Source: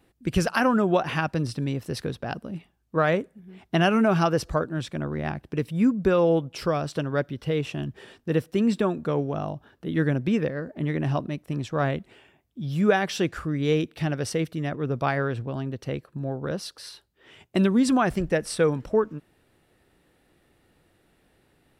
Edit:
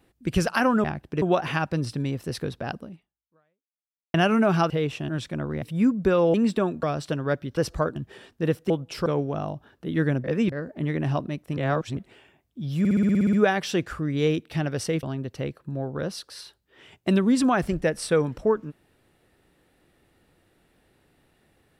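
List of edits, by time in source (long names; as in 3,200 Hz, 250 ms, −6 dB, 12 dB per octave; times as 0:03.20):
0:02.43–0:03.76: fade out exponential
0:04.32–0:04.71: swap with 0:07.44–0:07.83
0:05.24–0:05.62: move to 0:00.84
0:06.34–0:06.70: swap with 0:08.57–0:09.06
0:10.24–0:10.52: reverse
0:11.57–0:11.97: reverse
0:12.79: stutter 0.06 s, 10 plays
0:14.49–0:15.51: remove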